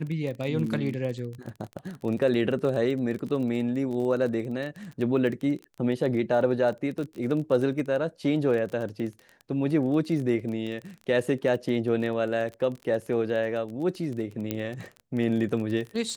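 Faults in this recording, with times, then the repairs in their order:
crackle 25 per s -32 dBFS
14.51 s: pop -14 dBFS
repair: de-click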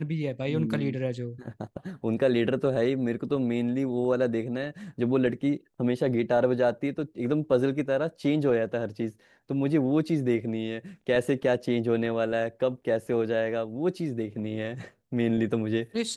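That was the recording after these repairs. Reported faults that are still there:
nothing left

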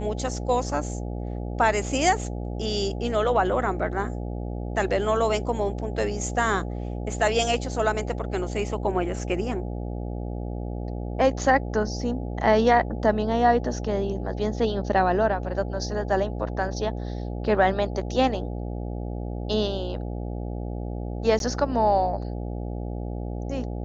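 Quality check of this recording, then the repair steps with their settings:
buzz 60 Hz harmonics 14 -31 dBFS
21.39–21.40 s: dropout 12 ms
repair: de-hum 60 Hz, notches 14; interpolate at 21.39 s, 12 ms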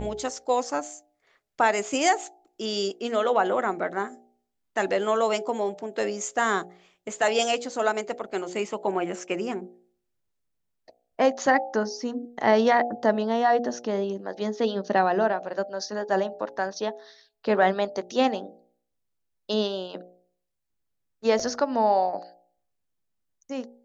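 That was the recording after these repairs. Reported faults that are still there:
nothing left

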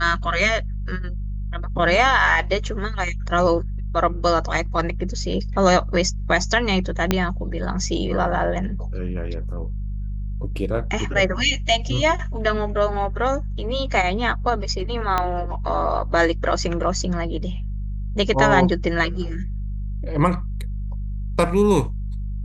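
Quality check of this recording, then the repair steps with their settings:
hum 50 Hz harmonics 4 -27 dBFS
7.11 s: pop -3 dBFS
15.18 s: pop -7 dBFS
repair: de-click; de-hum 50 Hz, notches 4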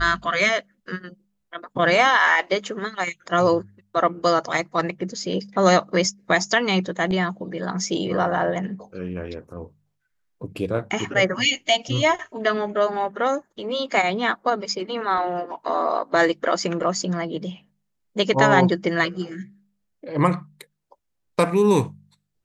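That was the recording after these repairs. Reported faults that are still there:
7.11 s: pop
15.18 s: pop

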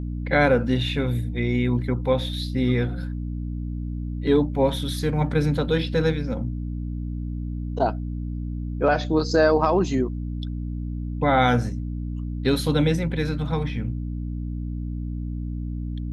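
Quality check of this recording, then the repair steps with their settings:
hum 60 Hz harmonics 5 -29 dBFS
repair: de-hum 60 Hz, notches 5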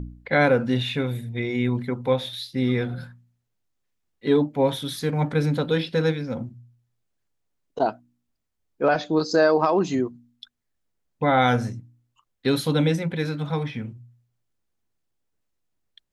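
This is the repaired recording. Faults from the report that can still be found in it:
nothing left

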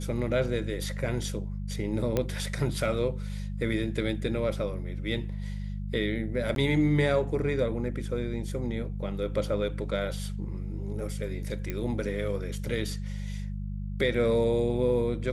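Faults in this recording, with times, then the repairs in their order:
hum 50 Hz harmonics 4 -34 dBFS
2.17 s: pop -13 dBFS
6.55–6.56 s: dropout 12 ms
11.70 s: pop -18 dBFS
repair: de-click; de-hum 50 Hz, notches 4; interpolate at 6.55 s, 12 ms

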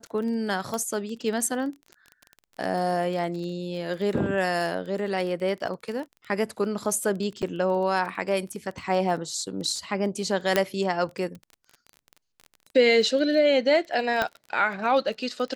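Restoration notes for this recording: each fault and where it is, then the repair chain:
crackle 21 per s -33 dBFS
0.74 s: pop -17 dBFS
7.42–7.43 s: dropout 7.1 ms
10.56 s: pop -6 dBFS
14.22 s: pop -11 dBFS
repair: de-click; interpolate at 7.42 s, 7.1 ms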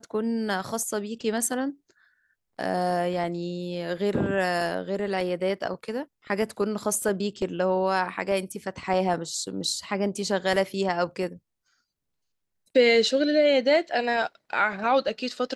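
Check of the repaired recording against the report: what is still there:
nothing left

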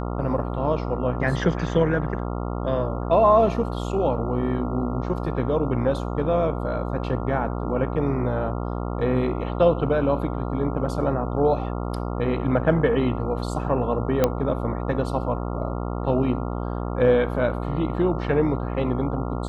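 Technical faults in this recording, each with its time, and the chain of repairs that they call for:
buzz 60 Hz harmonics 23 -28 dBFS
14.24 s: pop -6 dBFS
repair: de-click; de-hum 60 Hz, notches 23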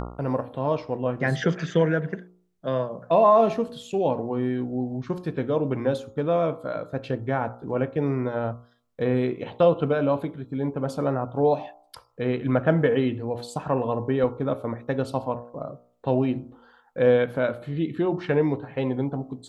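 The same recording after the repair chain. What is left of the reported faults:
nothing left

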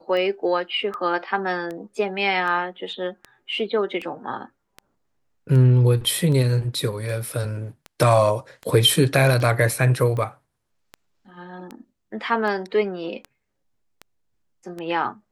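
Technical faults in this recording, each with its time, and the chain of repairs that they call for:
tick 78 rpm -20 dBFS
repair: de-click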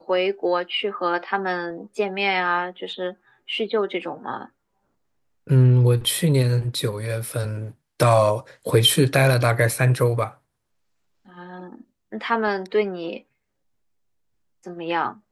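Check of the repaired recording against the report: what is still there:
nothing left

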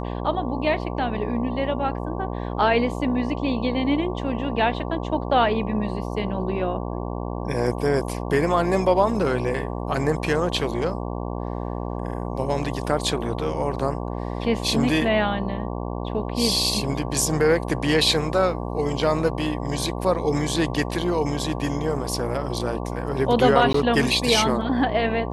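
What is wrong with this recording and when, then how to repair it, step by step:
buzz 60 Hz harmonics 19 -29 dBFS
23.73–23.74 s: dropout 13 ms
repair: de-hum 60 Hz, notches 19; interpolate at 23.73 s, 13 ms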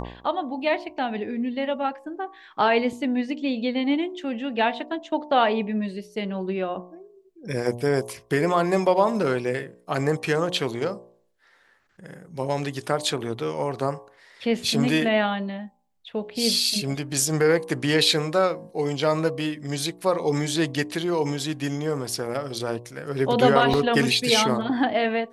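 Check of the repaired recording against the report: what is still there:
nothing left

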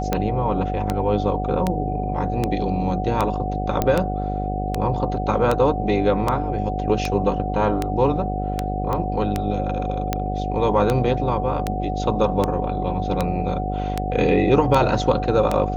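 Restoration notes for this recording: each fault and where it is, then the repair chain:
buzz 50 Hz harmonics 16 -26 dBFS
tick 78 rpm -7 dBFS
whine 740 Hz -27 dBFS
3.82 s: pop -7 dBFS
8.93 s: pop -13 dBFS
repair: de-click; band-stop 740 Hz, Q 30; de-hum 50 Hz, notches 16

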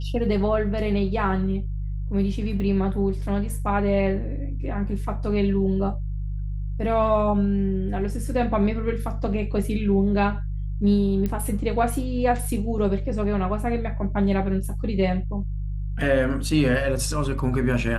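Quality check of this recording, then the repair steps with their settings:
hum 50 Hz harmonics 3 -28 dBFS
2.60 s: dropout 2.1 ms
11.26 s: pop -15 dBFS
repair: de-click; de-hum 50 Hz, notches 3; interpolate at 2.60 s, 2.1 ms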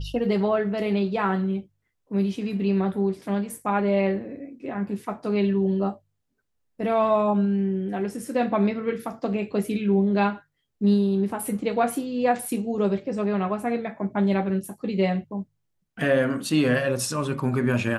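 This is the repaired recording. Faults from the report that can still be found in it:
nothing left

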